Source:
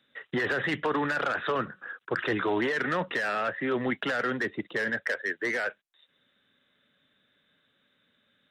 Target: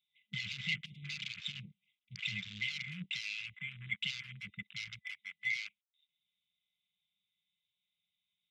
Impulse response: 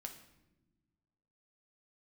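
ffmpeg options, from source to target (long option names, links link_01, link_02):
-af "tiltshelf=frequency=1300:gain=-5,afftfilt=real='re*(1-between(b*sr/4096,210,2000))':imag='im*(1-between(b*sr/4096,210,2000))':win_size=4096:overlap=0.75,afwtdn=0.00794,volume=-2dB"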